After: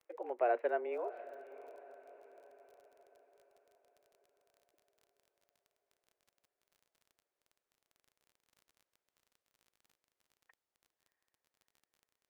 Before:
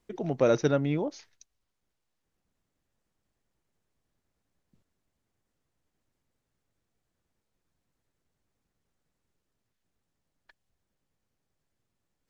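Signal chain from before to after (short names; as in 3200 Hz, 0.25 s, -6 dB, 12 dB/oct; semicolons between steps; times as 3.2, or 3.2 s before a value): mistuned SSB +120 Hz 250–2400 Hz; crackle 27/s -45 dBFS; diffused feedback echo 0.669 s, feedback 48%, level -16 dB; gain -8 dB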